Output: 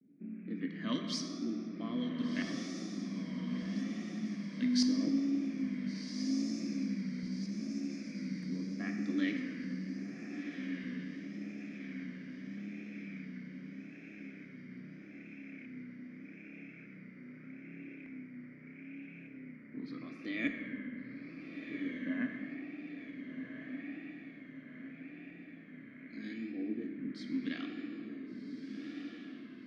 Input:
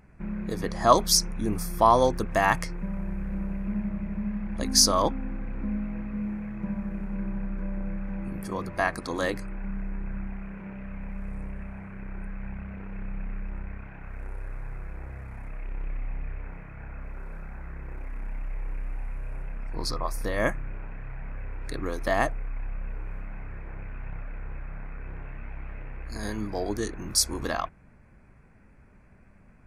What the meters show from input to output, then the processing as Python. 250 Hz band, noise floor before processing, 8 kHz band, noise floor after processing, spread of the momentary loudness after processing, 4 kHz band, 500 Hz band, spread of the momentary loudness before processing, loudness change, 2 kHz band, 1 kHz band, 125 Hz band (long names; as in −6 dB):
−1.5 dB, −54 dBFS, −21.5 dB, −52 dBFS, 15 LU, −14.0 dB, −19.0 dB, 19 LU, −10.5 dB, −9.5 dB, −27.0 dB, −11.0 dB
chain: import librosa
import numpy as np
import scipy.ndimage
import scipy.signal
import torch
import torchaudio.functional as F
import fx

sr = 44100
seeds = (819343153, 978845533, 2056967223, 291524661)

y = scipy.signal.sosfilt(scipy.signal.cheby1(3, 1.0, 160.0, 'highpass', fs=sr, output='sos'), x)
y = fx.dynamic_eq(y, sr, hz=440.0, q=1.0, threshold_db=-43.0, ratio=4.0, max_db=-6)
y = fx.rider(y, sr, range_db=3, speed_s=2.0)
y = fx.vowel_filter(y, sr, vowel='i')
y = fx.filter_lfo_lowpass(y, sr, shape='saw_up', hz=0.83, low_hz=470.0, high_hz=7300.0, q=0.85)
y = fx.echo_diffused(y, sr, ms=1514, feedback_pct=52, wet_db=-6)
y = fx.room_shoebox(y, sr, seeds[0], volume_m3=190.0, walls='hard', distance_m=0.32)
y = fx.vibrato(y, sr, rate_hz=0.8, depth_cents=96.0)
y = y * 10.0 ** (5.0 / 20.0)